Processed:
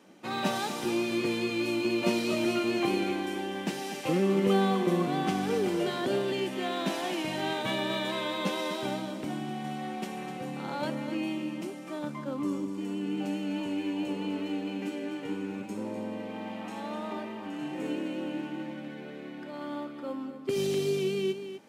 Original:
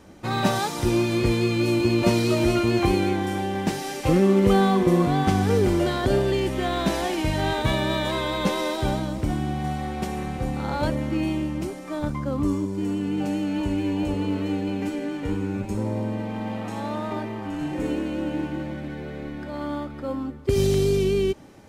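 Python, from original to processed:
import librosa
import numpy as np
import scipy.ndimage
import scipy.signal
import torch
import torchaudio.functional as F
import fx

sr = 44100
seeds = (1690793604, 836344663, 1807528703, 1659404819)

p1 = scipy.signal.sosfilt(scipy.signal.butter(4, 170.0, 'highpass', fs=sr, output='sos'), x)
p2 = fx.peak_eq(p1, sr, hz=2800.0, db=5.0, octaves=0.59)
p3 = p2 + fx.echo_single(p2, sr, ms=250, db=-10.5, dry=0)
y = F.gain(torch.from_numpy(p3), -7.0).numpy()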